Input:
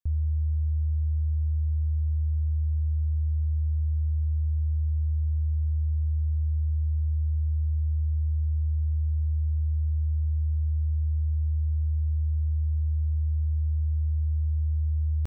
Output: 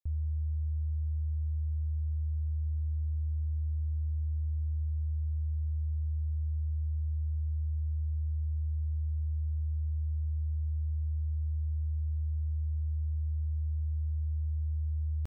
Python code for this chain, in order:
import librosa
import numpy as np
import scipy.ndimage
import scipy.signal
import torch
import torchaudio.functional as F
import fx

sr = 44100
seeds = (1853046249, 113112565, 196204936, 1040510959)

y = fx.env_flatten(x, sr, amount_pct=70, at=(2.66, 4.83))
y = y * 10.0 ** (-6.5 / 20.0)